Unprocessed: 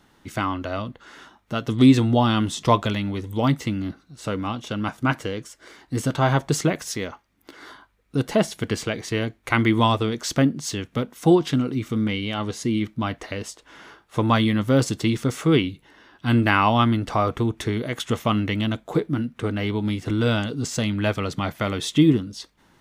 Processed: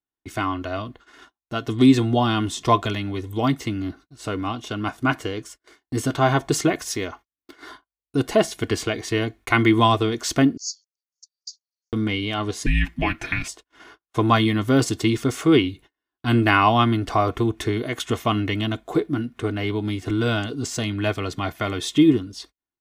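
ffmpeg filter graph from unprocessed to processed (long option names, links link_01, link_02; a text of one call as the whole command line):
ffmpeg -i in.wav -filter_complex "[0:a]asettb=1/sr,asplit=3[link_01][link_02][link_03];[link_01]atrim=end=10.574[link_04];[link_02]atrim=start=10.57:end=11.93,asetpts=PTS-STARTPTS,afade=type=in:duration=0.004:curve=qsin,afade=type=out:start_time=1.356:duration=0.004:curve=qsin,asuperpass=centerf=5600:order=12:qfactor=2.1,acompressor=mode=upward:threshold=-53dB:ratio=2.5:attack=3.2:release=140:knee=2.83:detection=peak[link_05];[link_03]atrim=start=11.926[link_06];[link_04][link_05]acrossfade=duration=0.004:curve1=hsin:curve2=qsin[link_07];[link_07][link_06]acrossfade=duration=0.004:curve1=qsin:curve2=hsin,asettb=1/sr,asplit=3[link_08][link_09][link_10];[link_08]atrim=end=12.664[link_11];[link_09]atrim=start=12.66:end=13.48,asetpts=PTS-STARTPTS,afade=type=in:duration=0.004:curve=qsin,afade=type=out:start_time=0.816:duration=0.004:curve=qsin,equalizer=frequency=2600:width_type=o:width=0.5:gain=11.5,aecho=1:1:5.7:0.64,atrim=end_sample=36162,afreqshift=-380[link_12];[link_10]atrim=start=13.476[link_13];[link_11][link_12]acrossfade=duration=0.004:curve1=hsin:curve2=qsin[link_14];[link_14][link_13]acrossfade=duration=0.004:curve1=qsin:curve2=hsin,agate=range=-38dB:threshold=-44dB:ratio=16:detection=peak,aecho=1:1:2.8:0.52,dynaudnorm=framelen=790:gausssize=13:maxgain=11.5dB,volume=-1dB" out.wav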